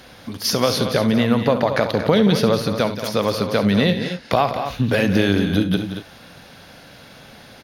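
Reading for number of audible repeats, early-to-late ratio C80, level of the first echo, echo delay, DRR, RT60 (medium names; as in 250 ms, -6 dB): 3, no reverb, -13.0 dB, 69 ms, no reverb, no reverb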